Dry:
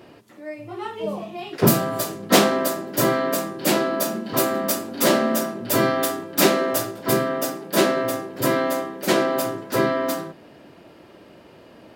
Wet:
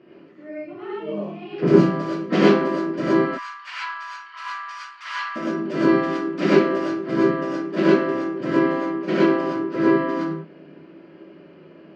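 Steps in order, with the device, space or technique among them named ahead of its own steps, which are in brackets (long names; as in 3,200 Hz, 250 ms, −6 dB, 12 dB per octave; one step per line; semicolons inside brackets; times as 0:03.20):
0:03.25–0:05.36: elliptic high-pass filter 980 Hz, stop band 50 dB
guitar cabinet (loudspeaker in its box 110–3,900 Hz, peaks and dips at 110 Hz −10 dB, 160 Hz +9 dB, 330 Hz +9 dB, 860 Hz −9 dB, 3,700 Hz −10 dB)
reverb whose tail is shaped and stops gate 140 ms rising, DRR −7 dB
level −8.5 dB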